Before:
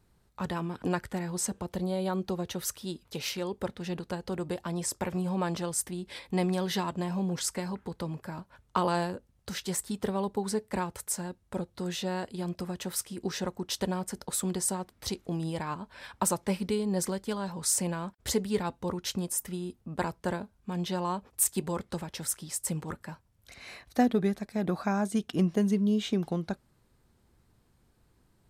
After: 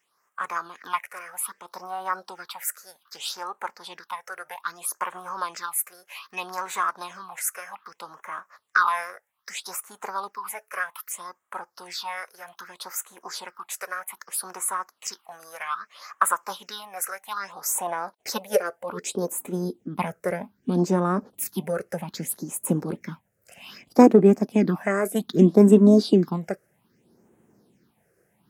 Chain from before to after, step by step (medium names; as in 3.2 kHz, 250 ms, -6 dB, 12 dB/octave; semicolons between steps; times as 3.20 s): high-pass sweep 930 Hz -> 200 Hz, 17.12–20.01 s; formant shift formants +4 st; phase shifter stages 6, 0.63 Hz, lowest notch 240–4800 Hz; trim +5 dB